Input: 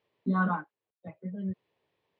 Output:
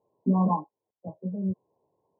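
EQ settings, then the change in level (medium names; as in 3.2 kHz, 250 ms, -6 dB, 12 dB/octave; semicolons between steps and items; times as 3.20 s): brick-wall FIR low-pass 1.1 kHz; bass shelf 68 Hz -9 dB; +6.0 dB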